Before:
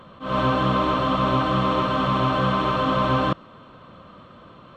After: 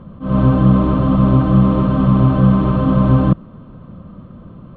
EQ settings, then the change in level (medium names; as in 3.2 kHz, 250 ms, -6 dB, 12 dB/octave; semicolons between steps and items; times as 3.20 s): tilt EQ -4.5 dB/octave; peaking EQ 190 Hz +6.5 dB 1 oct; -2.5 dB